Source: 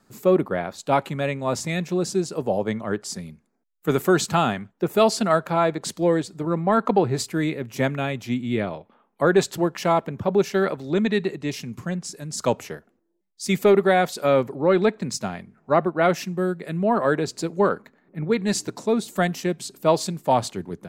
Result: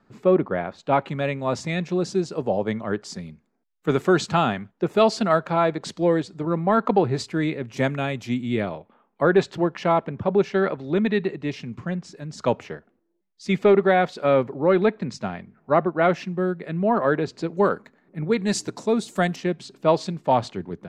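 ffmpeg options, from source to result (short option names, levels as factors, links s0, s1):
-af "asetnsamples=n=441:p=0,asendcmd='1.08 lowpass f 5000;7.77 lowpass f 8700;8.73 lowpass f 3400;17.57 lowpass f 8600;19.36 lowpass f 3900',lowpass=2900"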